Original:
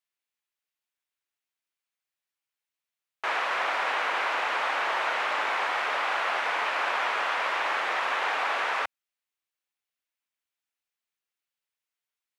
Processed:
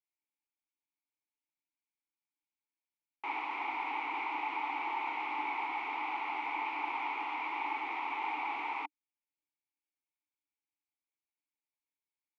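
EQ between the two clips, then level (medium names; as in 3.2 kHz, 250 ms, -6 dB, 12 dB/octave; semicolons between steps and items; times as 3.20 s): vowel filter u; +5.5 dB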